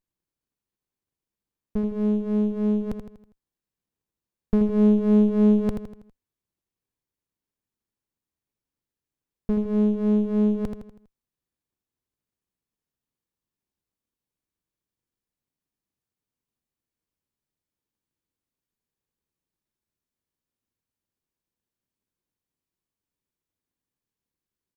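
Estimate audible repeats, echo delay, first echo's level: 5, 81 ms, -7.0 dB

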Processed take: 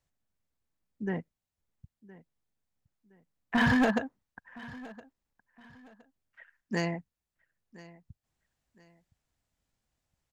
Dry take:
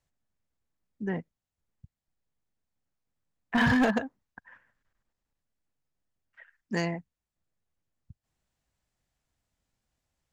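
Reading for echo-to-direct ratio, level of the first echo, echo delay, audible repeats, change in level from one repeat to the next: -19.5 dB, -20.0 dB, 1016 ms, 2, -10.5 dB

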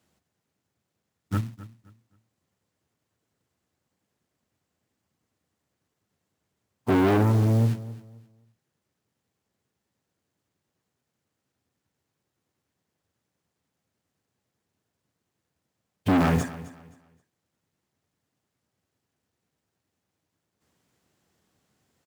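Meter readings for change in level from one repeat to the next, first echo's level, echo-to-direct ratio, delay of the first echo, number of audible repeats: -11.5 dB, -17.0 dB, -16.5 dB, 262 ms, 2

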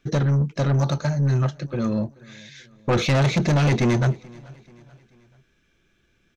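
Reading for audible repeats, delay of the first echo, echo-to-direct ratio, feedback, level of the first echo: 2, 434 ms, -23.0 dB, 48%, -24.0 dB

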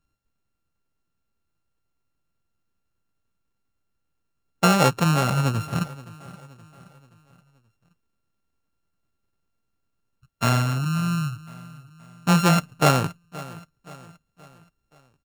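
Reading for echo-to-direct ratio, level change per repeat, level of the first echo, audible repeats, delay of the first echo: -18.0 dB, -6.5 dB, -19.0 dB, 3, 524 ms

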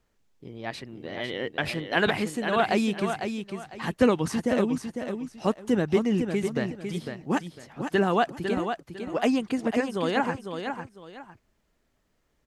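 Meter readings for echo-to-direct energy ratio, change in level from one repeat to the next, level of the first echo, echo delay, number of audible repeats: -6.5 dB, -11.5 dB, -7.0 dB, 502 ms, 2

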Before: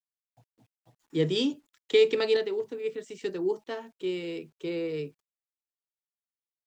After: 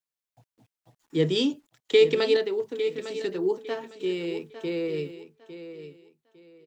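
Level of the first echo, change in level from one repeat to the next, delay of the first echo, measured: -12.0 dB, -12.0 dB, 854 ms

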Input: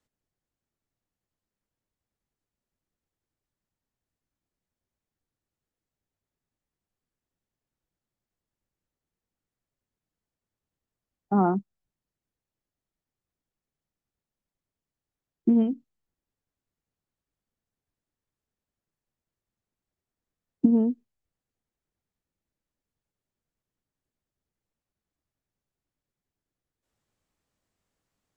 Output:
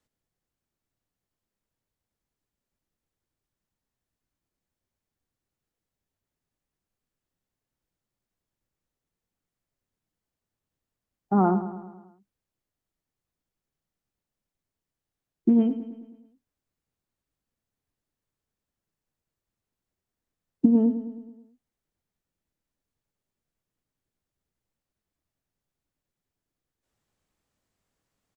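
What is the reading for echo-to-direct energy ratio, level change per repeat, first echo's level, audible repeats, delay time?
-11.0 dB, -5.0 dB, -12.5 dB, 5, 107 ms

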